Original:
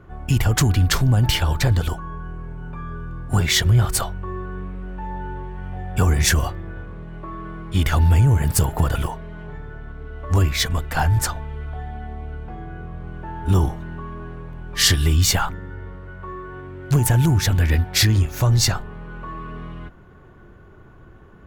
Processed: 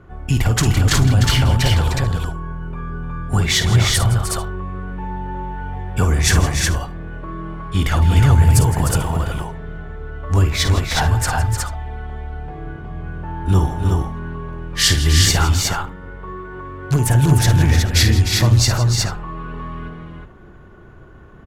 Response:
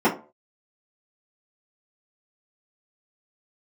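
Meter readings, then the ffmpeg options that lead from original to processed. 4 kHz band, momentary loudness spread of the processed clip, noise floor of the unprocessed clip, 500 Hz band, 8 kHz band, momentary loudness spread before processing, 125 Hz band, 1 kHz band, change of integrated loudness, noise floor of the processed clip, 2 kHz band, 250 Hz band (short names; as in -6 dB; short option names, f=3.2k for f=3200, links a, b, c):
+3.5 dB, 18 LU, -46 dBFS, +3.5 dB, +3.0 dB, 19 LU, +3.5 dB, +4.0 dB, +3.0 dB, -41 dBFS, +3.5 dB, +3.5 dB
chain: -af "lowpass=12k,aecho=1:1:52|162|303|364|439:0.335|0.188|0.398|0.708|0.106,volume=1dB"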